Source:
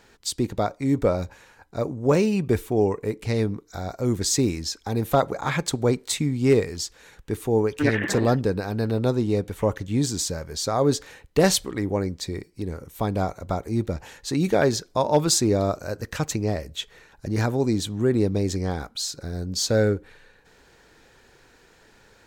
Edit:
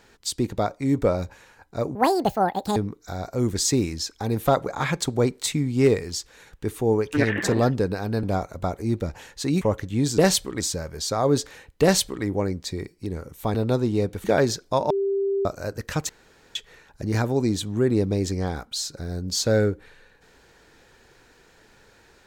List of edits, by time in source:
1.95–3.42 s: speed 181%
8.89–9.59 s: swap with 13.10–14.48 s
11.38–11.80 s: copy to 10.16 s
15.14–15.69 s: bleep 394 Hz -20.5 dBFS
16.33–16.79 s: room tone

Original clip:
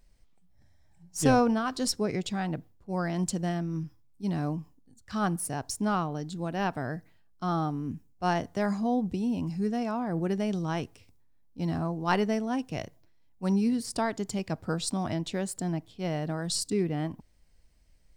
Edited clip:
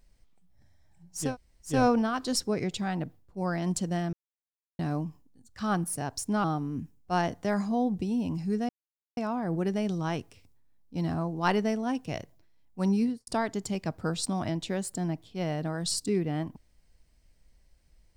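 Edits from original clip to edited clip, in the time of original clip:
1.25 s: insert room tone 0.48 s, crossfade 0.24 s
3.65–4.31 s: mute
5.96–7.56 s: delete
9.81 s: insert silence 0.48 s
13.65–13.91 s: studio fade out

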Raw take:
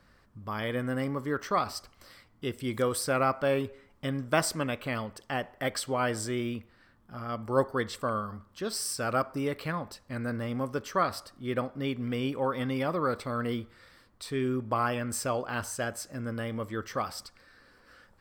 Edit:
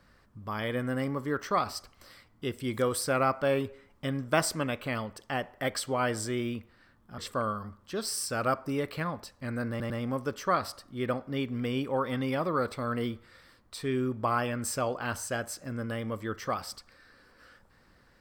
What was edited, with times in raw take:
7.18–7.86 s: delete
10.38 s: stutter 0.10 s, 3 plays

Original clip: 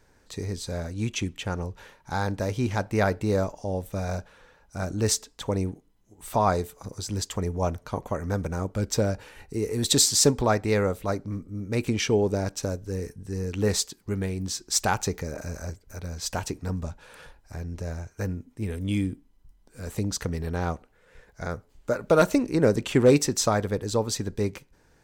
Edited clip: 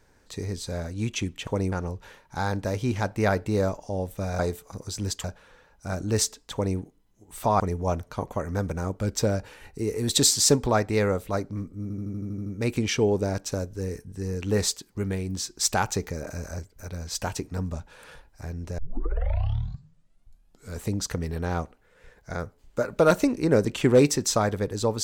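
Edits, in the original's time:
5.43–5.68 s: copy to 1.47 s
6.50–7.35 s: move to 4.14 s
11.57 s: stutter 0.08 s, 9 plays
17.89 s: tape start 2.02 s

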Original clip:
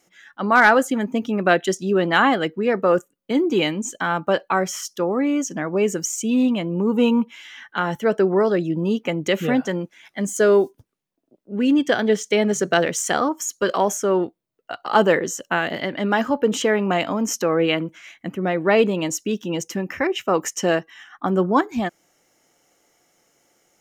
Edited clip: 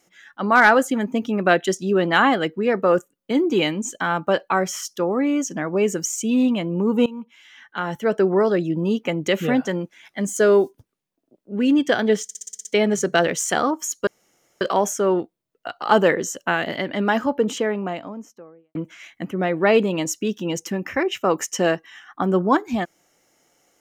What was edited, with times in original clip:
7.06–8.26 s: fade in, from -20 dB
12.23 s: stutter 0.06 s, 8 plays
13.65 s: insert room tone 0.54 s
16.06–17.79 s: studio fade out

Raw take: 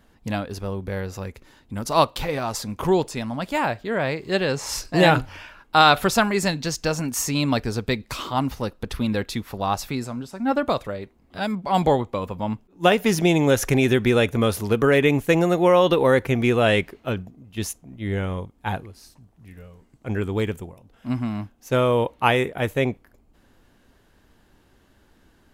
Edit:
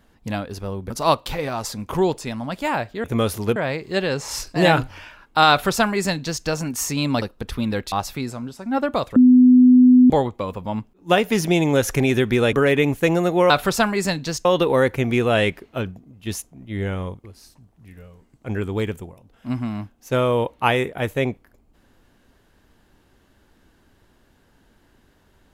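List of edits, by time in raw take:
0.90–1.80 s: delete
5.88–6.83 s: copy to 15.76 s
7.60–8.64 s: delete
9.34–9.66 s: delete
10.90–11.84 s: bleep 251 Hz -7.5 dBFS
14.27–14.79 s: move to 3.94 s
18.55–18.84 s: delete

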